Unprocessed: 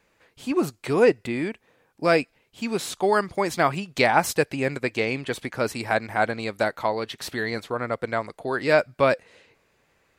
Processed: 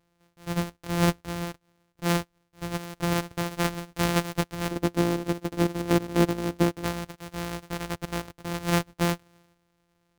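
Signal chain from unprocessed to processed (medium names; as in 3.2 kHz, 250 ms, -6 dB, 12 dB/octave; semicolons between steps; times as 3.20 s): sorted samples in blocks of 256 samples; 4.71–6.84 s: peaking EQ 310 Hz +11.5 dB 1.7 oct; trim -5.5 dB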